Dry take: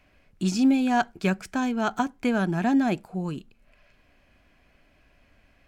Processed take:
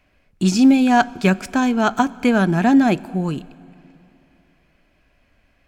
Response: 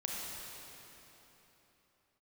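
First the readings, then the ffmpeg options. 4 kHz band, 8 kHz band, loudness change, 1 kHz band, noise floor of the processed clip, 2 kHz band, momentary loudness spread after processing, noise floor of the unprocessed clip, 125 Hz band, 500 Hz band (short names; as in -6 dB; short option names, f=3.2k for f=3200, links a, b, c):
+8.0 dB, +8.0 dB, +8.0 dB, +8.0 dB, -61 dBFS, +8.0 dB, 10 LU, -62 dBFS, +8.0 dB, +8.0 dB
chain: -filter_complex "[0:a]agate=range=-8dB:threshold=-51dB:ratio=16:detection=peak,asplit=2[a][b];[1:a]atrim=start_sample=2205,asetrate=52920,aresample=44100[c];[b][c]afir=irnorm=-1:irlink=0,volume=-20dB[d];[a][d]amix=inputs=2:normalize=0,volume=7.5dB"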